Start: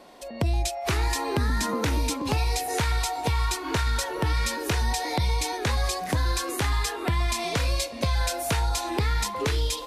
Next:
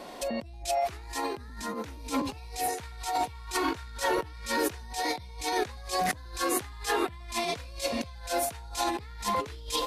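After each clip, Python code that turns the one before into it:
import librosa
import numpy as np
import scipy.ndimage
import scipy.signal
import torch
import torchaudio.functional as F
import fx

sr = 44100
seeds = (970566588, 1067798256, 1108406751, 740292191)

y = fx.over_compress(x, sr, threshold_db=-32.0, ratio=-0.5)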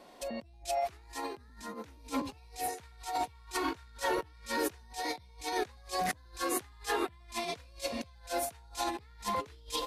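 y = fx.upward_expand(x, sr, threshold_db=-42.0, expansion=1.5)
y = y * 10.0 ** (-3.5 / 20.0)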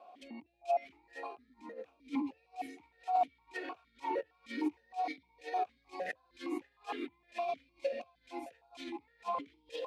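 y = fx.vowel_held(x, sr, hz=6.5)
y = y * 10.0 ** (6.0 / 20.0)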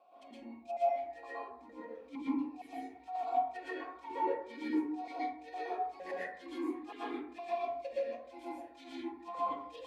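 y = fx.rev_plate(x, sr, seeds[0], rt60_s=0.68, hf_ratio=0.35, predelay_ms=105, drr_db=-8.5)
y = y * 10.0 ** (-9.0 / 20.0)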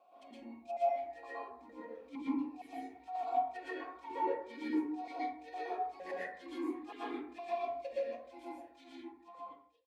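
y = fx.fade_out_tail(x, sr, length_s=1.72)
y = y * 10.0 ** (-1.0 / 20.0)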